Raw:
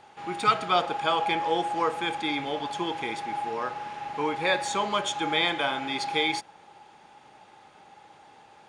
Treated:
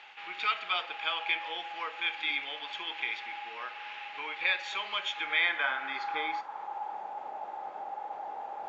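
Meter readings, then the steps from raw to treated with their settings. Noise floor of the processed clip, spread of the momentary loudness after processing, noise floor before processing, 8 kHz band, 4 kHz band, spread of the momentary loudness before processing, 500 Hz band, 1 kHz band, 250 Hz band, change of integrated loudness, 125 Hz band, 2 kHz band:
-44 dBFS, 11 LU, -54 dBFS, under -15 dB, -3.5 dB, 7 LU, -15.0 dB, -8.0 dB, -20.0 dB, -5.5 dB, under -25 dB, +0.5 dB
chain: in parallel at +3 dB: compressor 5:1, threshold -36 dBFS, peak gain reduction 17.5 dB; on the sum: low shelf 140 Hz -11.5 dB; reverse; upward compressor, threshold -29 dBFS; reverse; Bessel low-pass 4500 Hz, order 2; notches 50/100 Hz; band-pass sweep 2600 Hz -> 720 Hz, 4.99–7.08; requantised 12-bit, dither none; gain +1.5 dB; AAC 32 kbps 16000 Hz

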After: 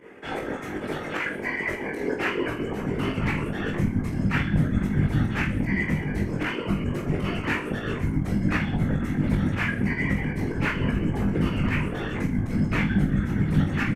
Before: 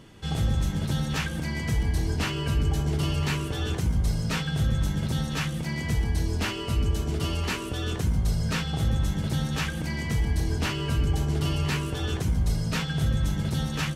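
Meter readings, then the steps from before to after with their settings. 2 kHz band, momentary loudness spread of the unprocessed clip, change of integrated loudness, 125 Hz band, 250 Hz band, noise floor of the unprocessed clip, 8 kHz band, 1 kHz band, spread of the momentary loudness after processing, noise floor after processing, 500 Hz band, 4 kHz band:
+6.0 dB, 3 LU, +1.5 dB, -0.5 dB, +6.0 dB, -33 dBFS, under -10 dB, +2.5 dB, 6 LU, -33 dBFS, +4.5 dB, -6.5 dB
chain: reverb removal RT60 0.71 s; dynamic EQ 4100 Hz, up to +7 dB, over -51 dBFS, Q 2.3; high-pass sweep 370 Hz -> 160 Hz, 2.09–3.5; in parallel at +0.5 dB: limiter -25 dBFS, peak gain reduction 12 dB; on the sum: whisperiser; resonant high shelf 2900 Hz -11 dB, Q 3; pump 154 bpm, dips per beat 2, -11 dB, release 85 ms; on a send: reverse bouncing-ball echo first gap 20 ms, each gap 1.3×, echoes 5; on the sum: gain -3.5 dB

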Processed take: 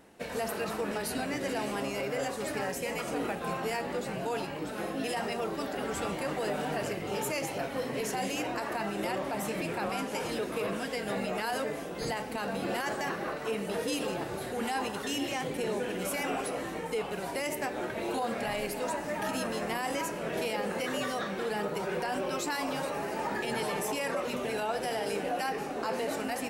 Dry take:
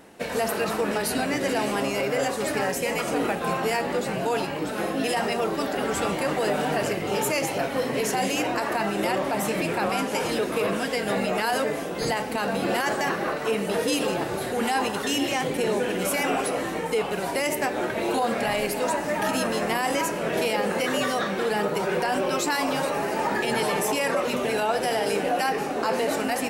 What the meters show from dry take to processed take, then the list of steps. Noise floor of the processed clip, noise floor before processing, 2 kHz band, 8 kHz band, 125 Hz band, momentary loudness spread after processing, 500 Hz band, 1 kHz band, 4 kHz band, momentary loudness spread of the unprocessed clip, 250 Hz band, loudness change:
-38 dBFS, -30 dBFS, -8.0 dB, -8.0 dB, -6.5 dB, 2 LU, -8.0 dB, -8.0 dB, -8.0 dB, 2 LU, -7.5 dB, -8.0 dB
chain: low shelf 87 Hz +5.5 dB; gain -8 dB

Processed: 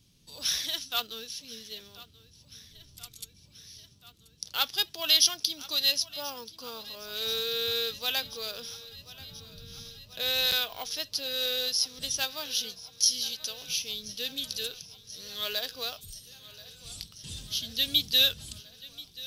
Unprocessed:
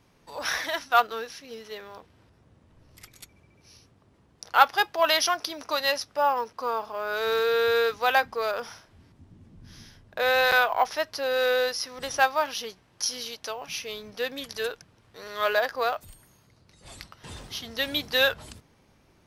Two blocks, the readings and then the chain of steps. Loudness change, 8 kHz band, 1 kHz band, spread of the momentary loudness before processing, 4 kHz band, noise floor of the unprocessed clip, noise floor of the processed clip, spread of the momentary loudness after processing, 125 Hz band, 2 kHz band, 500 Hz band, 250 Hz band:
-2.5 dB, +5.0 dB, -18.0 dB, 19 LU, +4.5 dB, -62 dBFS, -59 dBFS, 20 LU, 0.0 dB, -11.5 dB, -13.5 dB, -5.5 dB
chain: EQ curve 170 Hz 0 dB, 870 Hz -20 dB, 2000 Hz -13 dB, 3300 Hz +5 dB; thinning echo 1.033 s, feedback 75%, high-pass 200 Hz, level -19 dB

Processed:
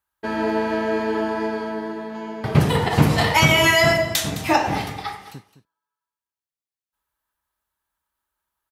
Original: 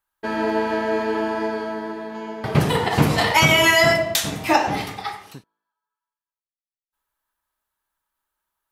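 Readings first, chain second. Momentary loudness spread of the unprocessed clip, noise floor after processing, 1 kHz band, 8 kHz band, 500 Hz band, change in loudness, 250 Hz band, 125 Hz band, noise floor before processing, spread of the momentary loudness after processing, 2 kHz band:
17 LU, under -85 dBFS, -1.0 dB, -1.0 dB, -0.5 dB, -0.5 dB, +1.0 dB, +2.5 dB, under -85 dBFS, 16 LU, -1.0 dB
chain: HPF 49 Hz; low shelf 110 Hz +9 dB; on a send: echo 0.212 s -14.5 dB; on the sum: gain -1 dB

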